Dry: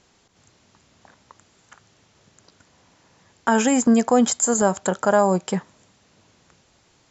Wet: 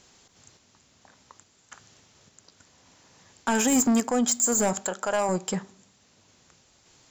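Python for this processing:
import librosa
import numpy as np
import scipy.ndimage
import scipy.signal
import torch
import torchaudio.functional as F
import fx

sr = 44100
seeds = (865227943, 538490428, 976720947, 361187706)

y = fx.high_shelf(x, sr, hz=4300.0, db=9.0)
y = fx.tremolo_random(y, sr, seeds[0], hz=3.5, depth_pct=55)
y = fx.graphic_eq(y, sr, hz=(125, 250, 2000), db=(-11, -5, 3), at=(4.73, 5.29))
y = 10.0 ** (-17.5 / 20.0) * np.tanh(y / 10.0 ** (-17.5 / 20.0))
y = fx.rev_fdn(y, sr, rt60_s=0.59, lf_ratio=1.35, hf_ratio=0.5, size_ms=23.0, drr_db=17.5)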